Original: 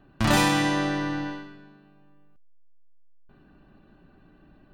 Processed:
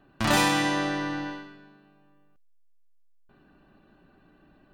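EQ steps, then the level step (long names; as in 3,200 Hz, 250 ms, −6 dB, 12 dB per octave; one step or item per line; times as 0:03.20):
low-shelf EQ 210 Hz −7.5 dB
0.0 dB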